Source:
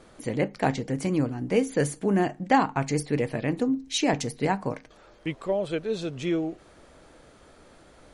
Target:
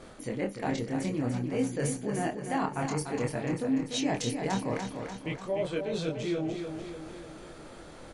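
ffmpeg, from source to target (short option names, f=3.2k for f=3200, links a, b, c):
-af "areverse,acompressor=threshold=-33dB:ratio=5,areverse,flanger=delay=22.5:depth=3.7:speed=0.54,aecho=1:1:294|588|882|1176|1470|1764|2058:0.447|0.25|0.14|0.0784|0.0439|0.0246|0.0138,volume=7dB"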